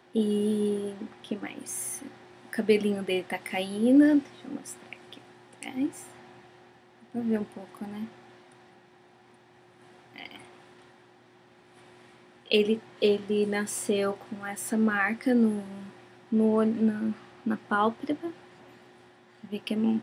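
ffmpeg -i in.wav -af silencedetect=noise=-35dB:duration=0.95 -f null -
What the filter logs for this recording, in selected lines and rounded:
silence_start: 6.02
silence_end: 7.15 | silence_duration: 1.13
silence_start: 8.06
silence_end: 10.16 | silence_duration: 2.10
silence_start: 10.36
silence_end: 12.50 | silence_duration: 2.14
silence_start: 18.31
silence_end: 19.44 | silence_duration: 1.14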